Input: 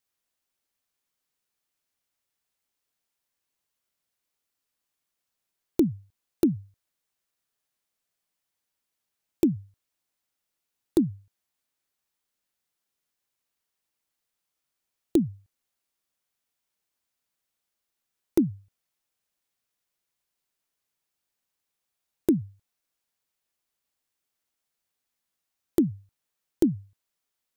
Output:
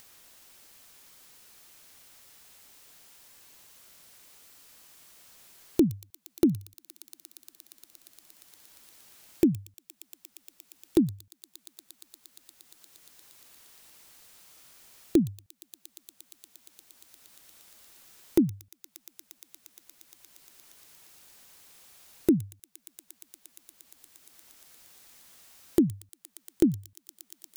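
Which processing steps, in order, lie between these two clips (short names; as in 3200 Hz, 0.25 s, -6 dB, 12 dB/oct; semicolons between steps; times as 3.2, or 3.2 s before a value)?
thin delay 0.117 s, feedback 81%, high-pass 3400 Hz, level -8 dB; upward compressor, threshold -33 dBFS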